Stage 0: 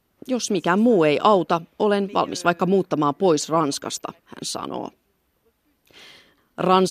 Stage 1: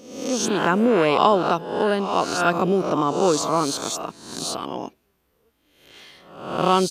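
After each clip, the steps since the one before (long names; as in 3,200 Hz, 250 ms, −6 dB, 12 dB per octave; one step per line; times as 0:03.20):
peak hold with a rise ahead of every peak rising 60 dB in 0.76 s
level −2.5 dB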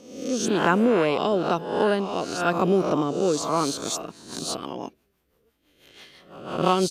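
rotating-speaker cabinet horn 1 Hz, later 6 Hz, at 0:03.37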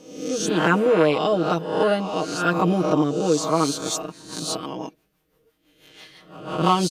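comb filter 6.4 ms, depth 85%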